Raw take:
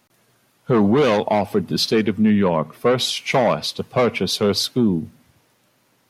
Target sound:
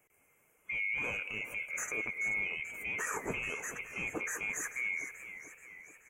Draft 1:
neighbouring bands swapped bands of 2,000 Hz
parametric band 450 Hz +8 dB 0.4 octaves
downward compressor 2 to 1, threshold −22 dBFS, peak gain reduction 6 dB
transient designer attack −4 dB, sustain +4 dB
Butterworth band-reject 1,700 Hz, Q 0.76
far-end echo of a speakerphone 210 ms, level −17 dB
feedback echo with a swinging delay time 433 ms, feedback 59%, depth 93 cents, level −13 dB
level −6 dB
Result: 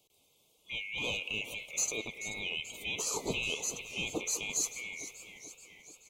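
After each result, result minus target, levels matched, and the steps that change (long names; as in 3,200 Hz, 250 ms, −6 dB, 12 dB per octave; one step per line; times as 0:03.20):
4,000 Hz band +14.5 dB; downward compressor: peak gain reduction −3 dB
change: Butterworth band-reject 4,000 Hz, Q 0.76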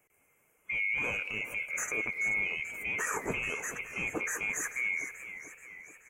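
downward compressor: peak gain reduction −3 dB
change: downward compressor 2 to 1, threshold −28.5 dBFS, peak gain reduction 9 dB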